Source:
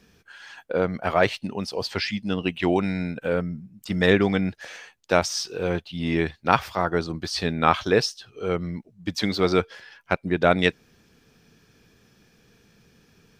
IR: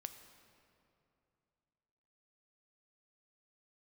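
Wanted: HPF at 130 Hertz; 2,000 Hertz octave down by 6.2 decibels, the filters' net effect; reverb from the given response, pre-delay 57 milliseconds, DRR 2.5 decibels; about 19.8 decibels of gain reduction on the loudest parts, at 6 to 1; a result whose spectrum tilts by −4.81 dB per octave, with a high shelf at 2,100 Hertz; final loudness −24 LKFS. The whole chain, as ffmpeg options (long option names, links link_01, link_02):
-filter_complex "[0:a]highpass=130,equalizer=frequency=2000:width_type=o:gain=-5,highshelf=frequency=2100:gain=-5.5,acompressor=threshold=-37dB:ratio=6,asplit=2[link_01][link_02];[1:a]atrim=start_sample=2205,adelay=57[link_03];[link_02][link_03]afir=irnorm=-1:irlink=0,volume=1.5dB[link_04];[link_01][link_04]amix=inputs=2:normalize=0,volume=15.5dB"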